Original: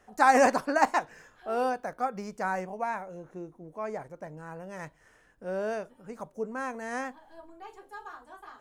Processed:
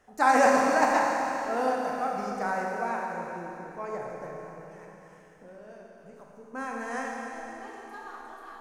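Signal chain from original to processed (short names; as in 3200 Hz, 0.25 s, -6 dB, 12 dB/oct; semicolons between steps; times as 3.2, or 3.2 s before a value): 4.31–6.54 compressor 4:1, threshold -50 dBFS, peak gain reduction 18.5 dB; Schroeder reverb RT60 3.4 s, combs from 27 ms, DRR -2 dB; gain -2 dB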